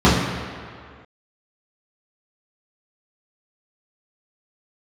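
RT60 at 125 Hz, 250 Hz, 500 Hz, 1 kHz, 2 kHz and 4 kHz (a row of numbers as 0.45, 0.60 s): 1.7, 1.8, 2.0, 2.2, 2.1, 1.6 s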